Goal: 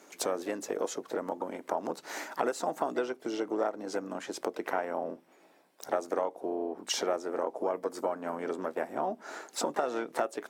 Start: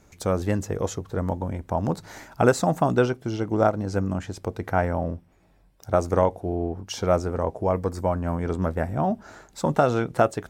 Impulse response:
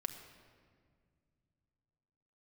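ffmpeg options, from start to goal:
-filter_complex "[0:a]asplit=3[a][b][c];[b]asetrate=29433,aresample=44100,atempo=1.49831,volume=-15dB[d];[c]asetrate=58866,aresample=44100,atempo=0.749154,volume=-14dB[e];[a][d][e]amix=inputs=3:normalize=0,acompressor=threshold=-31dB:ratio=6,highpass=f=290:w=0.5412,highpass=f=290:w=1.3066,volume=4dB"

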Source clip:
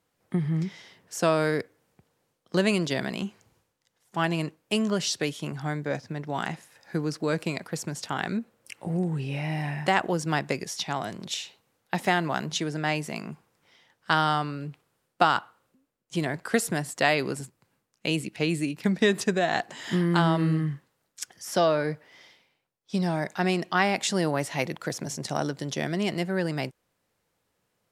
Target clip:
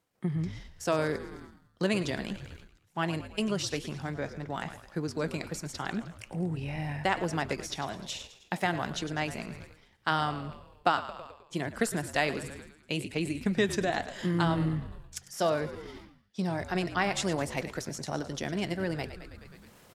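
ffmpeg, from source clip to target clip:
-filter_complex "[0:a]asplit=7[a][b][c][d][e][f][g];[b]adelay=148,afreqshift=-59,volume=-13dB[h];[c]adelay=296,afreqshift=-118,volume=-18.2dB[i];[d]adelay=444,afreqshift=-177,volume=-23.4dB[j];[e]adelay=592,afreqshift=-236,volume=-28.6dB[k];[f]adelay=740,afreqshift=-295,volume=-33.8dB[l];[g]adelay=888,afreqshift=-354,volume=-39dB[m];[a][h][i][j][k][l][m]amix=inputs=7:normalize=0,atempo=1.4,flanger=delay=1.8:depth=6.6:regen=-83:speed=1.2:shape=triangular,areverse,acompressor=mode=upward:threshold=-37dB:ratio=2.5,areverse"

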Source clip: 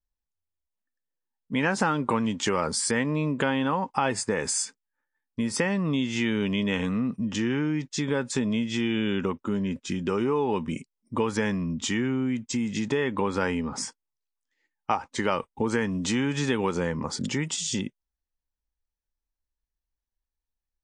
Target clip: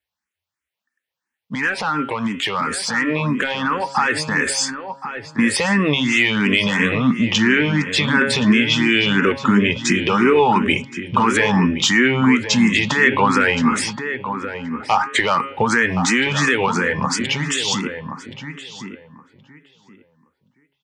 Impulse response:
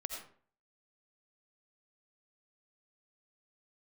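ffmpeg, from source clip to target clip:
-filter_complex "[0:a]highpass=f=81:w=0.5412,highpass=f=81:w=1.3066,equalizer=f=2k:t=o:w=2.1:g=13,bandreject=f=136.9:t=h:w=4,bandreject=f=273.8:t=h:w=4,bandreject=f=410.7:t=h:w=4,bandreject=f=547.6:t=h:w=4,bandreject=f=684.5:t=h:w=4,bandreject=f=821.4:t=h:w=4,bandreject=f=958.3:t=h:w=4,bandreject=f=1.0952k:t=h:w=4,bandreject=f=1.2321k:t=h:w=4,bandreject=f=1.369k:t=h:w=4,bandreject=f=1.5059k:t=h:w=4,bandreject=f=1.6428k:t=h:w=4,bandreject=f=1.7797k:t=h:w=4,bandreject=f=1.9166k:t=h:w=4,bandreject=f=2.0535k:t=h:w=4,bandreject=f=2.1904k:t=h:w=4,bandreject=f=2.3273k:t=h:w=4,bandreject=f=2.4642k:t=h:w=4,bandreject=f=2.6011k:t=h:w=4,bandreject=f=2.738k:t=h:w=4,bandreject=f=2.8749k:t=h:w=4,bandreject=f=3.0118k:t=h:w=4,bandreject=f=3.1487k:t=h:w=4,bandreject=f=3.2856k:t=h:w=4,bandreject=f=3.4225k:t=h:w=4,bandreject=f=3.5594k:t=h:w=4,bandreject=f=3.6963k:t=h:w=4,bandreject=f=3.8332k:t=h:w=4,bandreject=f=3.9701k:t=h:w=4,bandreject=f=4.107k:t=h:w=4,bandreject=f=4.2439k:t=h:w=4,bandreject=f=4.3808k:t=h:w=4,bandreject=f=4.5177k:t=h:w=4,acontrast=85,alimiter=limit=-11dB:level=0:latency=1:release=92,dynaudnorm=f=290:g=31:m=8dB,asplit=2[a][b];[b]adelay=1073,lowpass=f=1.9k:p=1,volume=-8.5dB,asplit=2[c][d];[d]adelay=1073,lowpass=f=1.9k:p=1,volume=0.2,asplit=2[e][f];[f]adelay=1073,lowpass=f=1.9k:p=1,volume=0.2[g];[c][e][g]amix=inputs=3:normalize=0[h];[a][h]amix=inputs=2:normalize=0,asplit=2[i][j];[j]afreqshift=2.9[k];[i][k]amix=inputs=2:normalize=1"

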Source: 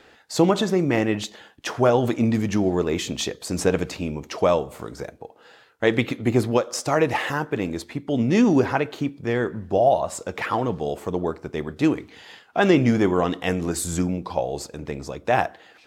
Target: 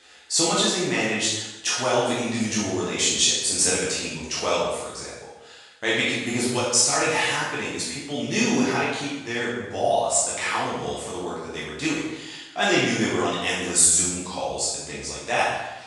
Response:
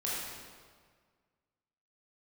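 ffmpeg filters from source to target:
-filter_complex "[0:a]crystalizer=i=9.5:c=0,aresample=22050,aresample=44100[a];[1:a]atrim=start_sample=2205,asetrate=74970,aresample=44100[b];[a][b]afir=irnorm=-1:irlink=0,volume=-6dB"

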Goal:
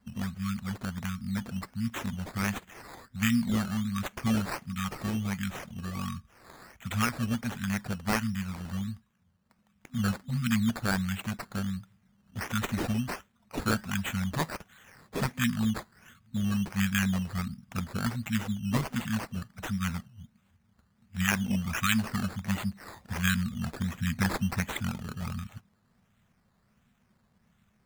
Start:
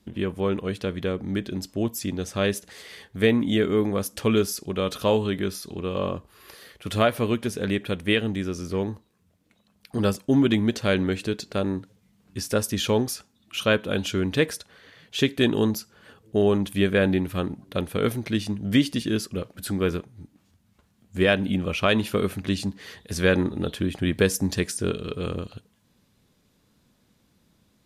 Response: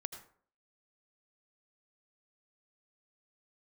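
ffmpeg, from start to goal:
-af "afftfilt=real='re*(1-between(b*sr/4096,250,1100))':imag='im*(1-between(b*sr/4096,250,1100))':win_size=4096:overlap=0.75,acrusher=samples=12:mix=1:aa=0.000001:lfo=1:lforange=7.2:lforate=1.4,volume=-3dB"

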